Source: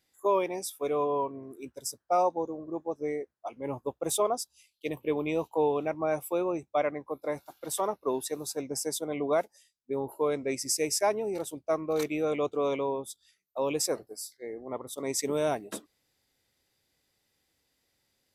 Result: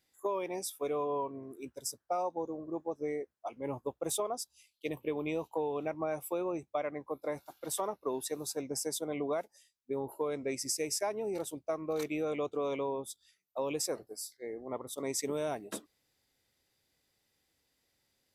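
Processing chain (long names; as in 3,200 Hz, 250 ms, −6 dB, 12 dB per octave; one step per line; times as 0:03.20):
downward compressor, threshold −28 dBFS, peak gain reduction 7.5 dB
level −2 dB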